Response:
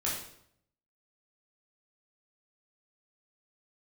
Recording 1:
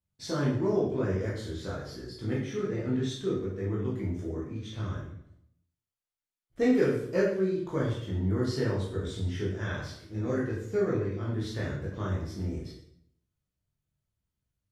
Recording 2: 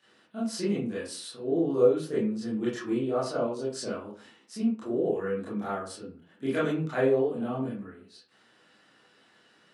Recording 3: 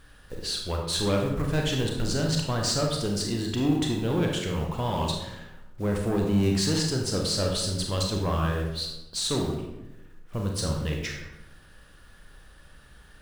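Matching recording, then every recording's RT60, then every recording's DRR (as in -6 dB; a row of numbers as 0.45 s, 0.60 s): 1; 0.70 s, 0.40 s, 0.95 s; -6.5 dB, -10.0 dB, 0.5 dB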